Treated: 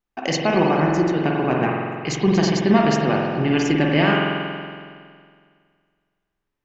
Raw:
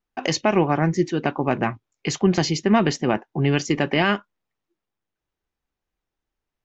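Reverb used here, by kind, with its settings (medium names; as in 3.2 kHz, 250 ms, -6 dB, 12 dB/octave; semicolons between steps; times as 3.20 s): spring tank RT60 2 s, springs 46 ms, chirp 65 ms, DRR -2 dB; trim -1.5 dB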